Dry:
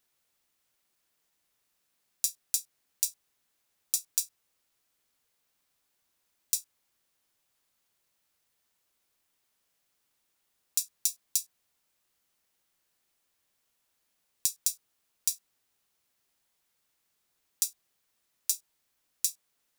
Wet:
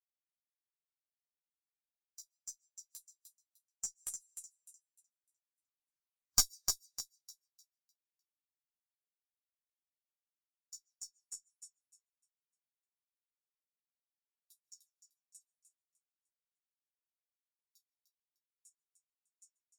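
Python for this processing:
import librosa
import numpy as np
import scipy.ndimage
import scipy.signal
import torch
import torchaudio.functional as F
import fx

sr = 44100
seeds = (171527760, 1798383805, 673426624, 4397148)

p1 = fx.spec_ripple(x, sr, per_octave=0.53, drift_hz=-2.8, depth_db=10)
p2 = fx.doppler_pass(p1, sr, speed_mps=9, closest_m=4.3, pass_at_s=6.11)
p3 = p2 + fx.echo_feedback(p2, sr, ms=302, feedback_pct=47, wet_db=-4.5, dry=0)
p4 = fx.rev_freeverb(p3, sr, rt60_s=1.0, hf_ratio=0.3, predelay_ms=105, drr_db=17.5)
p5 = fx.dynamic_eq(p4, sr, hz=7000.0, q=0.99, threshold_db=-58.0, ratio=4.0, max_db=6)
p6 = fx.cheby_harmonics(p5, sr, harmonics=(8,), levels_db=(-20,), full_scale_db=-1.0)
p7 = fx.chorus_voices(p6, sr, voices=2, hz=1.5, base_ms=13, depth_ms=3.0, mix_pct=45)
y = fx.spectral_expand(p7, sr, expansion=1.5)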